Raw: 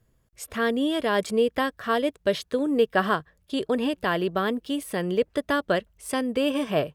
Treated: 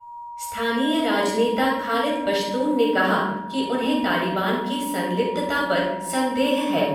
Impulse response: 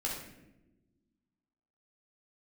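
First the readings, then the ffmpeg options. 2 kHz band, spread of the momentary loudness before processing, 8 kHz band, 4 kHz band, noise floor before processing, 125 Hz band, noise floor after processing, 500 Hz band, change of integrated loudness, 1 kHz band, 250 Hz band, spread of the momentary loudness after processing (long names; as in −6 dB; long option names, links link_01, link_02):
+4.0 dB, 6 LU, +5.0 dB, +5.0 dB, −67 dBFS, +3.0 dB, −36 dBFS, +2.0 dB, +3.5 dB, +6.0 dB, +3.5 dB, 5 LU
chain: -filter_complex "[0:a]aeval=exprs='val(0)+0.0178*sin(2*PI*950*n/s)':channel_layout=same,tiltshelf=frequency=1100:gain=-3.5,agate=range=-33dB:threshold=-35dB:ratio=3:detection=peak[link_01];[1:a]atrim=start_sample=2205[link_02];[link_01][link_02]afir=irnorm=-1:irlink=0"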